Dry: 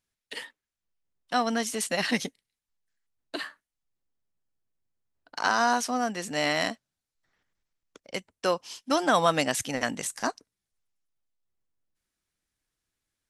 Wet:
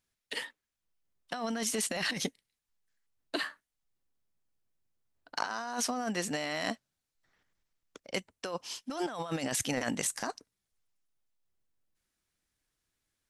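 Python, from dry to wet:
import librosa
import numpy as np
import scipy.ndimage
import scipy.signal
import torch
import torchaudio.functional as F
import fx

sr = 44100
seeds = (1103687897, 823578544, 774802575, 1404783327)

y = fx.over_compress(x, sr, threshold_db=-31.0, ratio=-1.0)
y = y * 10.0 ** (-3.0 / 20.0)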